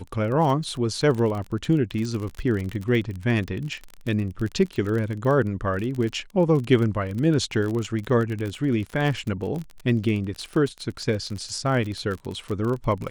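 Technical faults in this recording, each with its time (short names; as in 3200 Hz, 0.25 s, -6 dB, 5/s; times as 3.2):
crackle 33/s -28 dBFS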